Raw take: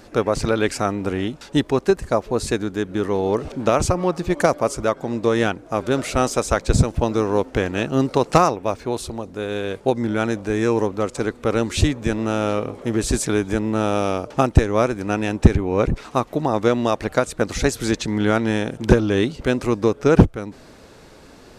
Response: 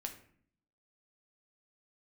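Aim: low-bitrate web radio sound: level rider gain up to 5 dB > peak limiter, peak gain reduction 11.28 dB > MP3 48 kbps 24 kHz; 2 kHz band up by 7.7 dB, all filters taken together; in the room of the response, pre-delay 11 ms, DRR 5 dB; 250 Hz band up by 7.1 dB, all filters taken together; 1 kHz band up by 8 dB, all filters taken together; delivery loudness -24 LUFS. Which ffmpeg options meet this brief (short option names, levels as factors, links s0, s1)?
-filter_complex "[0:a]equalizer=f=250:t=o:g=8.5,equalizer=f=1000:t=o:g=8,equalizer=f=2000:t=o:g=7,asplit=2[s0][s1];[1:a]atrim=start_sample=2205,adelay=11[s2];[s1][s2]afir=irnorm=-1:irlink=0,volume=0.708[s3];[s0][s3]amix=inputs=2:normalize=0,dynaudnorm=m=1.78,alimiter=limit=0.251:level=0:latency=1,volume=1.19" -ar 24000 -c:a libmp3lame -b:a 48k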